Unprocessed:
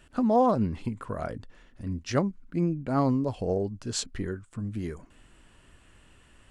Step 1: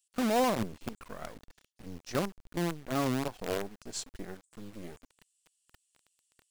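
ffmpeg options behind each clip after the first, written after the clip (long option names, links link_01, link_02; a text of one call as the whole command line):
ffmpeg -i in.wav -filter_complex "[0:a]equalizer=frequency=99:width_type=o:width=0.91:gain=-8.5,acrossover=split=4700[link_01][link_02];[link_01]acrusher=bits=5:dc=4:mix=0:aa=0.000001[link_03];[link_03][link_02]amix=inputs=2:normalize=0,volume=-5.5dB" out.wav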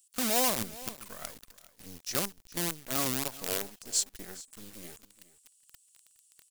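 ffmpeg -i in.wav -af "crystalizer=i=6.5:c=0,aecho=1:1:416:0.119,volume=-5.5dB" out.wav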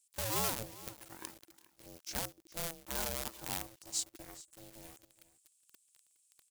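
ffmpeg -i in.wav -af "aeval=exprs='val(0)*sin(2*PI*330*n/s)':channel_layout=same,volume=-4dB" out.wav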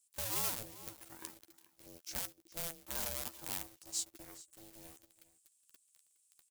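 ffmpeg -i in.wav -filter_complex "[0:a]asplit=2[link_01][link_02];[link_02]adelay=12,volume=-9.5dB[link_03];[link_01][link_03]amix=inputs=2:normalize=0,acrossover=split=1300[link_04][link_05];[link_04]alimiter=level_in=9.5dB:limit=-24dB:level=0:latency=1:release=292,volume=-9.5dB[link_06];[link_06][link_05]amix=inputs=2:normalize=0,highshelf=frequency=7200:gain=4,volume=-4dB" out.wav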